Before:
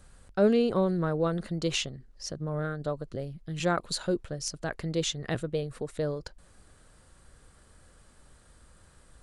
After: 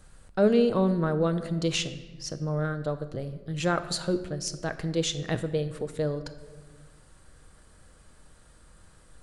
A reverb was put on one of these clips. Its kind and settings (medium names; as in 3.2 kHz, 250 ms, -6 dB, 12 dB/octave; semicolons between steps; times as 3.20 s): simulated room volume 1200 m³, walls mixed, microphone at 0.55 m; trim +1 dB